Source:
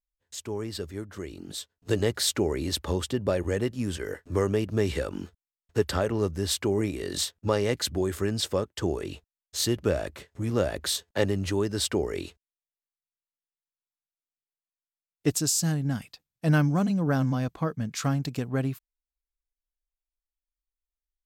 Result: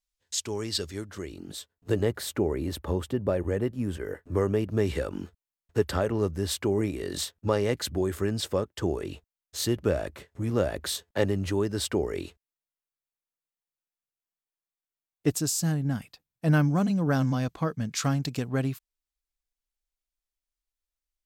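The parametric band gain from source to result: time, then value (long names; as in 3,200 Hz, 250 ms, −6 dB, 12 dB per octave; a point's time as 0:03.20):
parametric band 5,300 Hz 2.3 octaves
0:00.93 +10 dB
0:01.30 −0.5 dB
0:02.24 −12 dB
0:04.03 −12 dB
0:04.95 −4 dB
0:16.49 −4 dB
0:17.16 +3.5 dB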